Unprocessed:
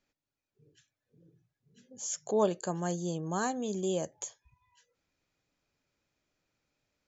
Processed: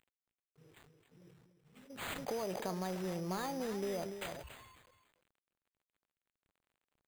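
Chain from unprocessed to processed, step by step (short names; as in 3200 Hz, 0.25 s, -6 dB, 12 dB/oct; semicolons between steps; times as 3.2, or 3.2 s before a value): CVSD 32 kbps; dynamic EQ 230 Hz, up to -4 dB, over -47 dBFS, Q 1.3; limiter -26.5 dBFS, peak gain reduction 9 dB; compressor 12:1, threshold -36 dBFS, peak gain reduction 6 dB; echo 0.291 s -11.5 dB; pitch shift +1 st; careless resampling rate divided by 8×, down none, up hold; sustainer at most 41 dB/s; gain +1 dB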